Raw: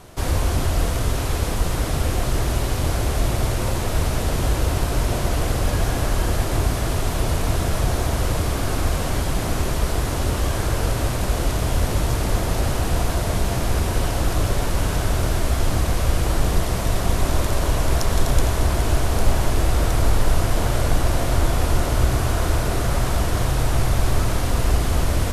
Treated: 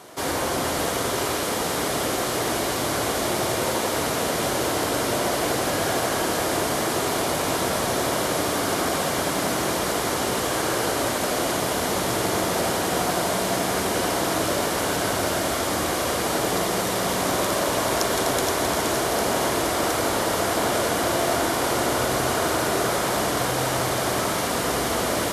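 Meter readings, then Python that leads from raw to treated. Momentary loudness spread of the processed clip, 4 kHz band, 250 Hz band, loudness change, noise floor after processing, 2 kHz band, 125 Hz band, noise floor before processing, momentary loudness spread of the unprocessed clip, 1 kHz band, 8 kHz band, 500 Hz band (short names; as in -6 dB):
2 LU, +4.0 dB, +0.5 dB, -0.5 dB, -26 dBFS, +4.0 dB, -12.5 dB, -24 dBFS, 2 LU, +4.0 dB, +4.0 dB, +3.5 dB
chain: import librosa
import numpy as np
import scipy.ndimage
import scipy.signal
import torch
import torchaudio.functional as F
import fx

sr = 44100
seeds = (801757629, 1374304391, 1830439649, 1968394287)

y = scipy.signal.sosfilt(scipy.signal.butter(2, 270.0, 'highpass', fs=sr, output='sos'), x)
y = fx.notch(y, sr, hz=2600.0, q=17.0)
y = fx.echo_split(y, sr, split_hz=2200.0, low_ms=85, high_ms=472, feedback_pct=52, wet_db=-5)
y = y * 10.0 ** (2.5 / 20.0)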